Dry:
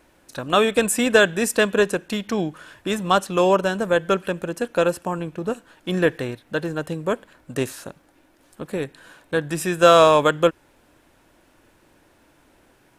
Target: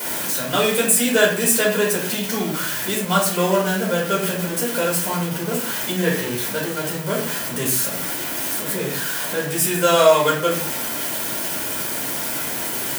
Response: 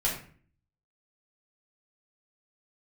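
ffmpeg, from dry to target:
-filter_complex "[0:a]aeval=exprs='val(0)+0.5*0.0891*sgn(val(0))':channel_layout=same,highpass=160,aemphasis=mode=production:type=50kf[link_01];[1:a]atrim=start_sample=2205[link_02];[link_01][link_02]afir=irnorm=-1:irlink=0,volume=-11dB"

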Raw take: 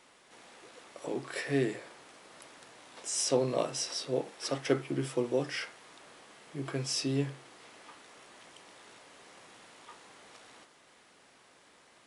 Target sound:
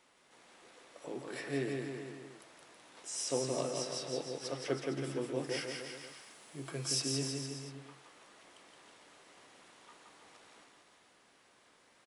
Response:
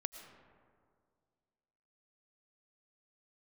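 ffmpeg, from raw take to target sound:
-filter_complex "[0:a]asettb=1/sr,asplit=3[link_01][link_02][link_03];[link_01]atrim=end=5.434[link_04];[link_02]atrim=start=5.43:end=7.02,asetpts=PTS-STARTPTS,afade=type=in:duration=0.004:curve=qsin,afade=type=out:start_time=1.586:duration=0.004:curve=qsin,aemphasis=mode=production:type=50kf[link_05];[link_03]atrim=start=7.016[link_06];[link_04][link_05]acrossfade=duration=0.004:curve1=hsin:curve2=qsin[link_07];[link_07][link_06]acrossfade=duration=0.004:curve1=qsin:curve2=hsin,aecho=1:1:170|323|460.7|584.6|696.2:0.631|0.398|0.251|0.158|0.1,volume=-7dB"

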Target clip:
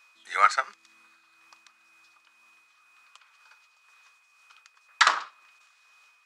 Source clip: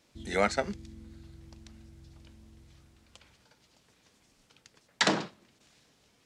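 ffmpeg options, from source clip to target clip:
ffmpeg -i in.wav -af "highpass=frequency=1200:width_type=q:width=4.6,aeval=exprs='val(0)+0.001*sin(2*PI*2500*n/s)':channel_layout=same,tremolo=f=2:d=0.49,volume=2.5dB" out.wav

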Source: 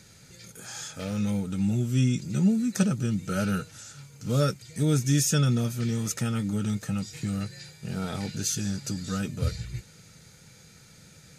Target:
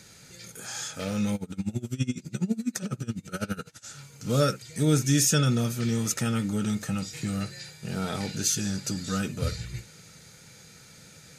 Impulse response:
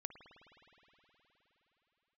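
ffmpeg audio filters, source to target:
-filter_complex "[0:a]lowshelf=frequency=160:gain=-7[link_01];[1:a]atrim=start_sample=2205,atrim=end_sample=3087[link_02];[link_01][link_02]afir=irnorm=-1:irlink=0,asettb=1/sr,asplit=3[link_03][link_04][link_05];[link_03]atrim=end=1.354[link_06];[link_04]atrim=start=1.35:end=3.86,asetpts=PTS-STARTPTS,afade=type=in:duration=0.004:curve=qsin,afade=type=out:start_time=2.506:duration=0.004:curve=qsin,aeval=exprs='val(0)*pow(10,-24*(0.5-0.5*cos(2*PI*12*n/s))/20)':channel_layout=same[link_07];[link_05]atrim=start=3.856[link_08];[link_06][link_07]acrossfade=duration=0.004:curve1=hsin:curve2=qsin[link_09];[link_09][link_08]acrossfade=duration=0.004:curve1=qsin:curve2=hsin,volume=8dB"

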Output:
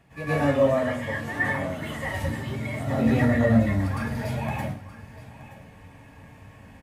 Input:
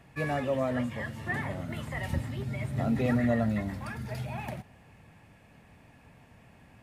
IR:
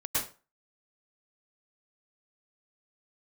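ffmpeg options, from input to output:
-filter_complex "[0:a]asettb=1/sr,asplit=3[link_01][link_02][link_03];[link_01]atrim=end=0.634[link_04];[link_02]atrim=start=0.63:end=2.96,asetpts=PTS-STARTPTS,afade=type=in:duration=0.004:curve=qsin,afade=type=out:start_time=2.326:duration=0.004:curve=qsin,lowshelf=frequency=180:gain=-9[link_05];[link_03]atrim=start=2.956[link_06];[link_04][link_05]acrossfade=duration=0.004:curve1=hsin:curve2=qsin[link_07];[link_07][link_06]acrossfade=duration=0.004:curve1=qsin:curve2=hsin,aecho=1:1:924:0.141[link_08];[1:a]atrim=start_sample=2205[link_09];[link_08][link_09]afir=irnorm=-1:irlink=0"

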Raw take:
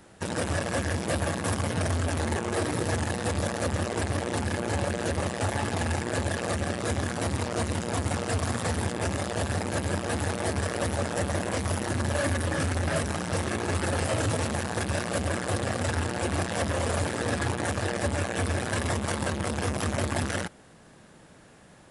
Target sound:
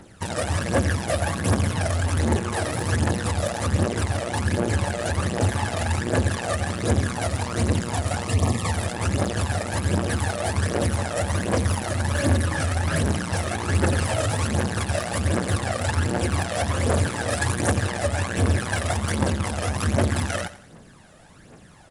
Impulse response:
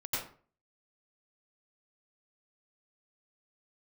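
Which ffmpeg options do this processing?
-filter_complex "[0:a]asettb=1/sr,asplit=3[link_01][link_02][link_03];[link_01]atrim=end=17.304[link_04];[link_02]atrim=start=17.3:end=17.74,asetpts=PTS-STARTPTS,afade=type=in:duration=0.004:curve=qsin,afade=type=out:start_time=0.436:duration=0.004:curve=qsin,highshelf=frequency=7500:gain=10[link_05];[link_03]atrim=start=17.736[link_06];[link_04][link_05]acrossfade=duration=0.004:curve1=hsin:curve2=qsin[link_07];[link_07][link_06]acrossfade=duration=0.004:curve1=qsin:curve2=hsin,aphaser=in_gain=1:out_gain=1:delay=1.7:decay=0.58:speed=1.3:type=triangular,asettb=1/sr,asplit=3[link_08][link_09][link_10];[link_08]atrim=end=8.254[link_11];[link_09]atrim=start=8.25:end=8.72,asetpts=PTS-STARTPTS,afade=type=in:duration=0.004:curve=qsin,afade=type=out:start_time=0.466:duration=0.004:curve=qsin,asuperstop=centerf=1500:order=8:qfactor=3.9[link_12];[link_10]atrim=start=8.716[link_13];[link_11][link_12]acrossfade=duration=0.004:curve1=hsin:curve2=qsin[link_14];[link_14][link_13]acrossfade=duration=0.004:curve1=qsin:curve2=hsin,aecho=1:1:88|176|264|352:0.178|0.0694|0.027|0.0105,volume=1.5dB"

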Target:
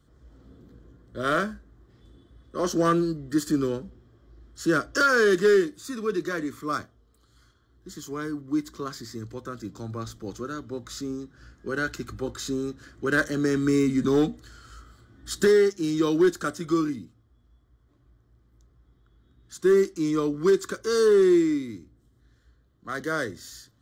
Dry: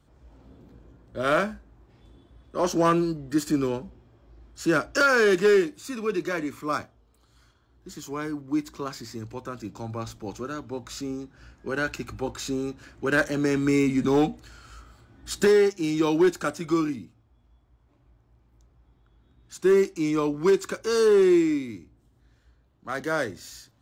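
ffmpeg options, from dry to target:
ffmpeg -i in.wav -af "superequalizer=8b=0.562:9b=0.355:12b=0.355" out.wav

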